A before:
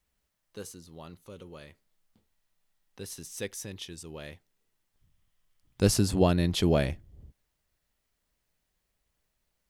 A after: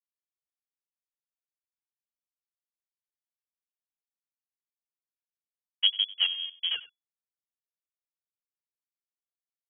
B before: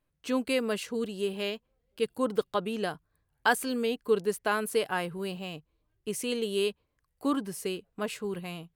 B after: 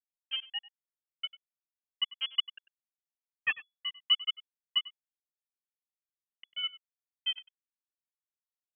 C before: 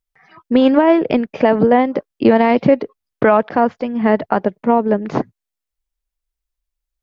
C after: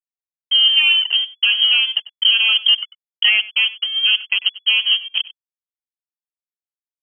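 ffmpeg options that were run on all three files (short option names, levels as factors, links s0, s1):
-af "afftfilt=real='re*gte(hypot(re,im),0.447)':imag='im*gte(hypot(re,im),0.447)':win_size=1024:overlap=0.75,agate=range=0.0316:threshold=0.01:ratio=16:detection=peak,alimiter=limit=0.473:level=0:latency=1:release=136,adynamicsmooth=sensitivity=2.5:basefreq=940,aeval=exprs='sgn(val(0))*max(abs(val(0))-0.0224,0)':c=same,aecho=1:1:96:0.119,lowpass=f=2900:t=q:w=0.5098,lowpass=f=2900:t=q:w=0.6013,lowpass=f=2900:t=q:w=0.9,lowpass=f=2900:t=q:w=2.563,afreqshift=-3400,volume=1.19"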